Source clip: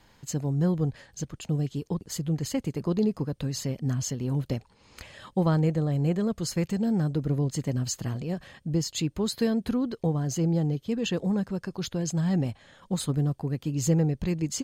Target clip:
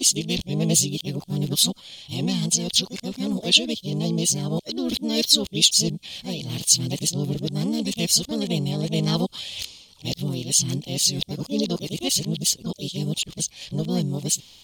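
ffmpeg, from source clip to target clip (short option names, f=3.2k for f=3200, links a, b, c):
-filter_complex "[0:a]areverse,asplit=2[a][b];[b]asetrate=58866,aresample=44100,atempo=0.749154,volume=-4dB[c];[a][c]amix=inputs=2:normalize=0,highshelf=f=2.3k:t=q:w=3:g=13,volume=-1dB"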